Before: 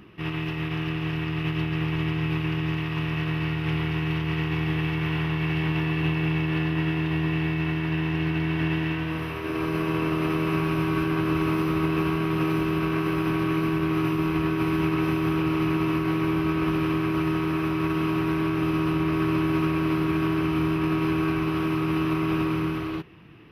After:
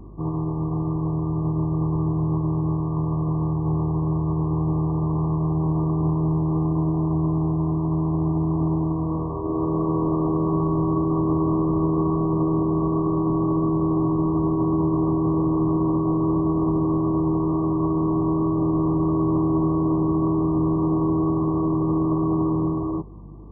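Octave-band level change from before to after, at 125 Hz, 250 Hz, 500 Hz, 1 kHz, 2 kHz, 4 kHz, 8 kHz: +3.5 dB, +3.5 dB, +3.5 dB, +2.0 dB, under -40 dB, under -40 dB, no reading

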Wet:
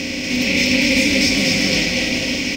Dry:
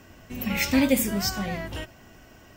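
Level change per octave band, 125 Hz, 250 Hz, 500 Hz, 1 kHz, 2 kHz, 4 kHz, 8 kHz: +7.5 dB, +7.5 dB, +7.5 dB, +1.0 dB, +15.0 dB, +16.5 dB, +10.0 dB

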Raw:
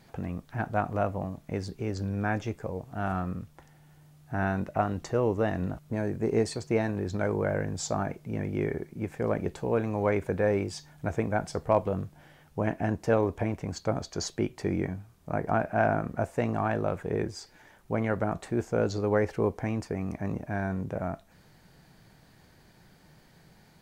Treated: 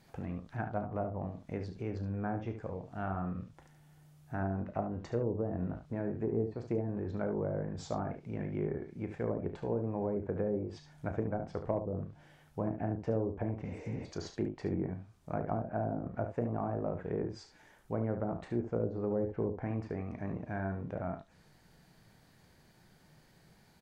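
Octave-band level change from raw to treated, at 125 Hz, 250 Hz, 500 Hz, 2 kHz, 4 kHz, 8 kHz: -5.5 dB, -5.5 dB, -7.0 dB, -13.0 dB, -13.0 dB, under -15 dB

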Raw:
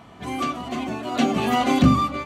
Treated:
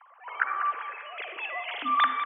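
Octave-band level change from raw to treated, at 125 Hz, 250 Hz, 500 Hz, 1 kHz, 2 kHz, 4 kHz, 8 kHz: under -40 dB, -28.0 dB, -17.0 dB, -3.5 dB, +1.5 dB, -6.5 dB, under -40 dB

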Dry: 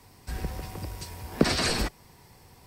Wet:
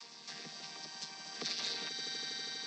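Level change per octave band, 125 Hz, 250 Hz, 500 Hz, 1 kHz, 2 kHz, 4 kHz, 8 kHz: -27.0 dB, -22.5 dB, -18.5 dB, -13.5 dB, -9.5 dB, -4.0 dB, -7.0 dB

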